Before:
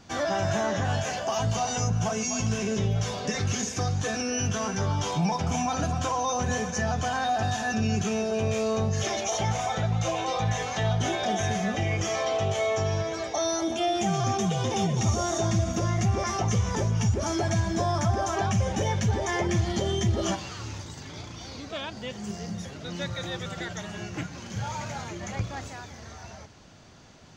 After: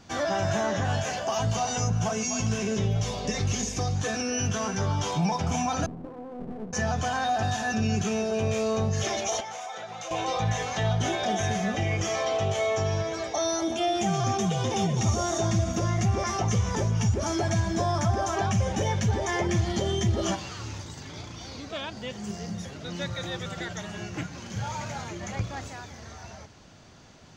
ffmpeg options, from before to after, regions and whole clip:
-filter_complex "[0:a]asettb=1/sr,asplit=3[a][b][c];[a]atrim=end=2.974[d];[b]atrim=start=2.97:end=3.96,asetpts=PTS-STARTPTS,afade=t=in:d=0.004:c=qsin,afade=t=out:st=0.986:d=0.004:c=qsin,equalizer=f=1.5k:t=o:w=0.47:g=-7.5,aeval=exprs='val(0)+0.0112*(sin(2*PI*50*n/s)+sin(2*PI*2*50*n/s)/2+sin(2*PI*3*50*n/s)/3+sin(2*PI*4*50*n/s)/4+sin(2*PI*5*50*n/s)/5)':c=same[e];[c]atrim=start=3.956[f];[d][e]acrossfade=d=0.004:c1=hsin:c2=qsin[g];[g][f]acrossfade=d=0.004:c1=qsin:c2=hsin,asettb=1/sr,asplit=3[h][i][j];[h]atrim=end=5.864[k];[i]atrim=start=5.86:end=6.73,asetpts=PTS-STARTPTS,afade=t=in:d=0.004:c=qsin,afade=t=out:st=0.866:d=0.004:c=qsin,asuperpass=centerf=270:order=4:qfactor=1.1,aeval=exprs='clip(val(0),-1,0.00794)':c=same[l];[j]atrim=start=6.726[m];[k][l]acrossfade=d=0.004:c1=hsin:c2=qsin[n];[n][m]acrossfade=d=0.004:c1=qsin:c2=hsin,asettb=1/sr,asplit=3[o][p][q];[o]atrim=end=9.404[r];[p]atrim=start=9.4:end=10.11,asetpts=PTS-STARTPTS,afade=t=in:d=0.004:c=qsin,afade=t=out:st=0.706:d=0.004:c=qsin,highpass=480,acompressor=threshold=-34dB:ratio=5:attack=3.2:release=140:knee=1:detection=peak[s];[q]atrim=start=10.106[t];[r][s]acrossfade=d=0.004:c1=hsin:c2=qsin[u];[u][t]acrossfade=d=0.004:c1=qsin:c2=hsin"

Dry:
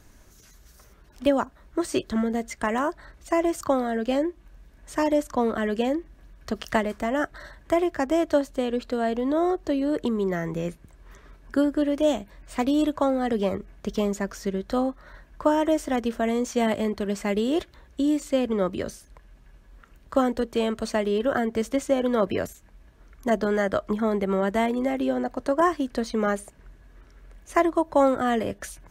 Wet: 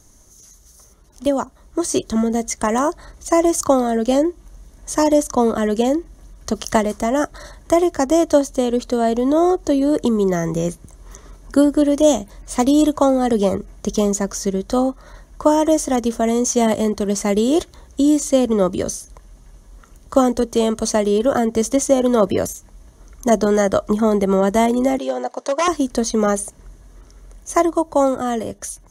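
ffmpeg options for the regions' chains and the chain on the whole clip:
-filter_complex "[0:a]asettb=1/sr,asplit=3[a][b][c];[a]atrim=end=24.984[d];[b]atrim=start=24.98:end=25.68,asetpts=PTS-STARTPTS,afade=t=in:d=0.004:c=qsin,afade=t=out:st=0.696:d=0.004:c=qsin,bandreject=f=1.3k:w=12,aeval=exprs='0.158*(abs(mod(val(0)/0.158+3,4)-2)-1)':c=same,highpass=520,lowpass=6.8k[e];[c]atrim=start=25.676[f];[d][e]acrossfade=d=0.004:c1=hsin:c2=qsin[g];[g][f]acrossfade=d=0.004:c1=qsin:c2=hsin,equalizer=f=1.6k:t=o:w=0.33:g=-9,equalizer=f=2.5k:t=o:w=0.33:g=-10,equalizer=f=6.3k:t=o:w=0.33:g=12,equalizer=f=10k:t=o:w=0.33:g=12,dynaudnorm=f=400:g=9:m=8dB,volume=1dB"

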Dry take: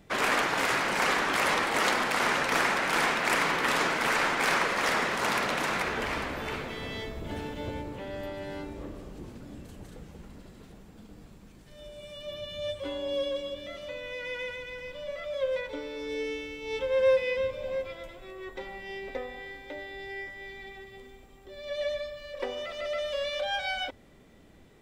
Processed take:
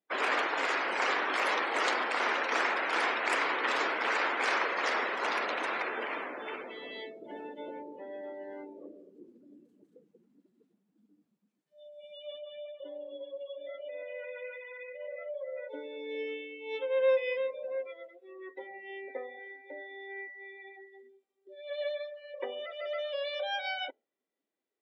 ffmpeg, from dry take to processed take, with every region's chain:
-filter_complex "[0:a]asettb=1/sr,asplit=3[a][b][c];[a]atrim=end=12.384[d];[b]atrim=start=12.38:end=15.68,asetpts=PTS-STARTPTS,afade=t=in:d=0.004:c=qsin,afade=t=out:st=3.296:d=0.004:c=qsin,acompressor=threshold=-37dB:ratio=6:attack=3.2:release=140:knee=1:detection=peak,highpass=150,lowpass=2.7k,aecho=1:1:42|274|350:0.501|0.531|0.473,atrim=end_sample=145530[e];[c]atrim=start=15.676[f];[d][e]acrossfade=d=0.004:c1=hsin:c2=qsin[g];[g][f]acrossfade=d=0.004:c1=qsin:c2=hsin,afftdn=nr=28:nf=-38,highpass=f=300:w=0.5412,highpass=f=300:w=1.3066,volume=-3dB"

